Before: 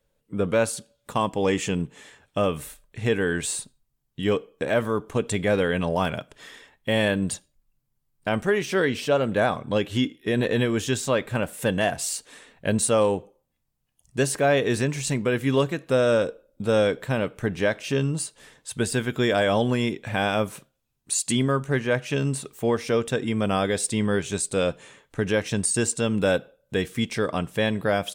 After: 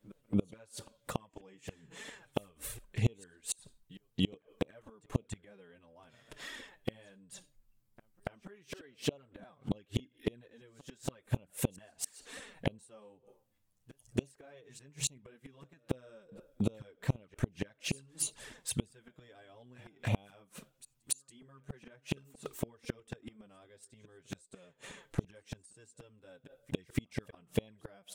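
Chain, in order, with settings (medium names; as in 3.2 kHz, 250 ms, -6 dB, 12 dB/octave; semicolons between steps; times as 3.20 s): inverted gate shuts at -17 dBFS, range -34 dB; pre-echo 284 ms -21 dB; touch-sensitive flanger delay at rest 10.5 ms, full sweep at -31.5 dBFS; trim +2 dB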